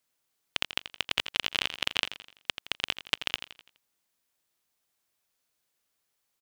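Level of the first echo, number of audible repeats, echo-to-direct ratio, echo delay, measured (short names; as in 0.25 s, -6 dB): -11.5 dB, 4, -10.5 dB, 84 ms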